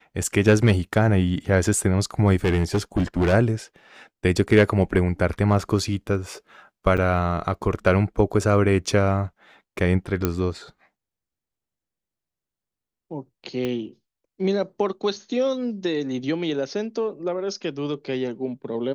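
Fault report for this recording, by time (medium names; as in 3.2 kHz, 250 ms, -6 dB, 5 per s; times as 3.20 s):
2.44–3.34 s: clipped -16.5 dBFS
6.97–6.98 s: dropout 7.8 ms
10.25 s: pop -7 dBFS
13.65 s: pop -15 dBFS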